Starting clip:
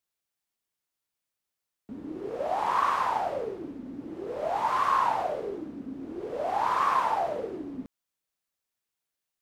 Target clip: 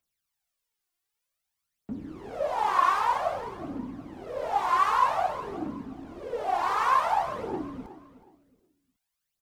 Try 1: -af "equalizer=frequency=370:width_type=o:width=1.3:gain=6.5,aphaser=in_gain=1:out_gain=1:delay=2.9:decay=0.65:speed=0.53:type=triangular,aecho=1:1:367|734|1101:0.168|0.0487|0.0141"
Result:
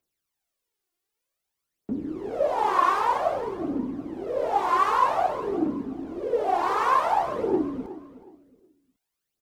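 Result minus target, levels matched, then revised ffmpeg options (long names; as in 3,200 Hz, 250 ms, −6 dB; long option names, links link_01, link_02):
500 Hz band +4.5 dB
-af "equalizer=frequency=370:width_type=o:width=1.3:gain=-4.5,aphaser=in_gain=1:out_gain=1:delay=2.9:decay=0.65:speed=0.53:type=triangular,aecho=1:1:367|734|1101:0.168|0.0487|0.0141"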